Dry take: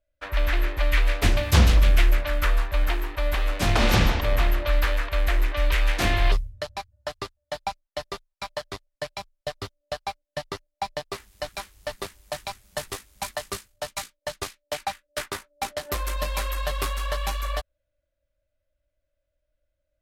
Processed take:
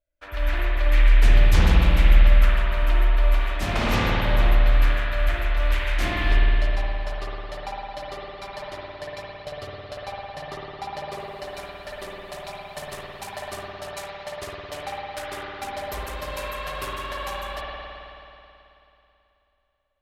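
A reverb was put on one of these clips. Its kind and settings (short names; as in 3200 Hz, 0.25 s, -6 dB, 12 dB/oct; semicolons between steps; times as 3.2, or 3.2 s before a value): spring tank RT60 3 s, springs 54 ms, chirp 75 ms, DRR -5.5 dB; gain -6.5 dB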